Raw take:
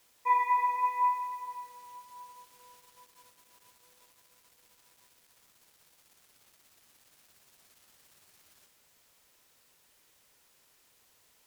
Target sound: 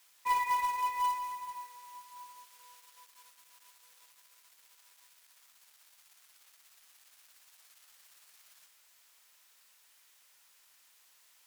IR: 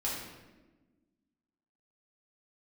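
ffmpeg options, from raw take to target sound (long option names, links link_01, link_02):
-filter_complex "[0:a]highpass=1000,acrusher=bits=3:mode=log:mix=0:aa=0.000001,asplit=2[link_01][link_02];[link_02]asoftclip=type=tanh:threshold=-37dB,volume=-5.5dB[link_03];[link_01][link_03]amix=inputs=2:normalize=0,volume=-2dB"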